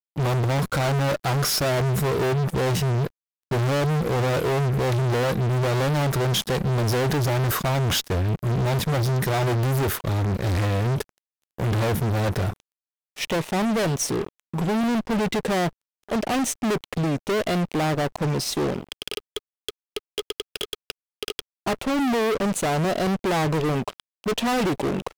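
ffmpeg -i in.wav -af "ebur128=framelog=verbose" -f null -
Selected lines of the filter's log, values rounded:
Integrated loudness:
  I:         -24.0 LUFS
  Threshold: -34.3 LUFS
Loudness range:
  LRA:         4.8 LU
  Threshold: -44.5 LUFS
  LRA low:   -27.5 LUFS
  LRA high:  -22.7 LUFS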